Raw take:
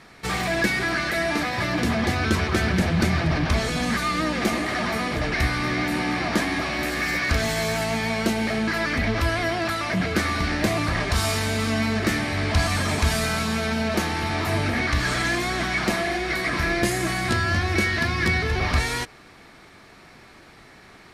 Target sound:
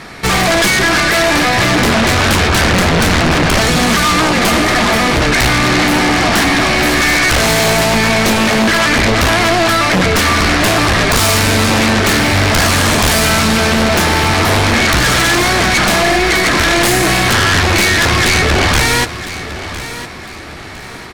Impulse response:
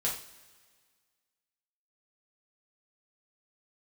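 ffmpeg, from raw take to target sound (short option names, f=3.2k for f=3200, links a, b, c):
-af "aeval=exprs='0.422*(cos(1*acos(clip(val(0)/0.422,-1,1)))-cos(1*PI/2))+0.106*(cos(4*acos(clip(val(0)/0.422,-1,1)))-cos(4*PI/2))':c=same,aeval=exprs='0.422*sin(PI/2*4.47*val(0)/0.422)':c=same,aecho=1:1:1007|2014|3021:0.211|0.0719|0.0244"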